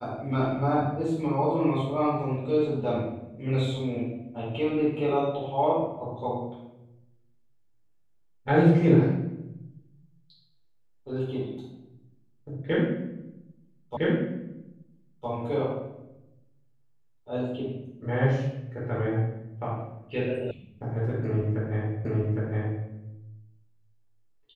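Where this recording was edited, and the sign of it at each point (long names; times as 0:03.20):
0:13.97: the same again, the last 1.31 s
0:20.51: cut off before it has died away
0:22.05: the same again, the last 0.81 s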